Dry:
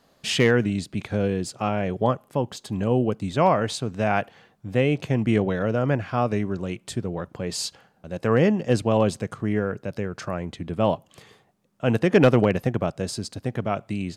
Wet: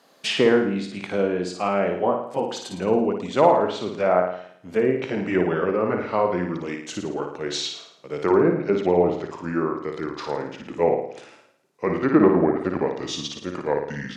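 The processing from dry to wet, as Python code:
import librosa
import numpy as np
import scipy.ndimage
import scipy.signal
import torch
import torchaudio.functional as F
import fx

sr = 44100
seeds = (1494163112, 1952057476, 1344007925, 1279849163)

y = fx.pitch_glide(x, sr, semitones=-6.0, runs='starting unshifted')
y = scipy.signal.sosfilt(scipy.signal.butter(2, 300.0, 'highpass', fs=sr, output='sos'), y)
y = fx.env_lowpass_down(y, sr, base_hz=1100.0, full_db=-20.5)
y = fx.room_flutter(y, sr, wall_m=9.5, rt60_s=0.62)
y = F.gain(torch.from_numpy(y), 4.5).numpy()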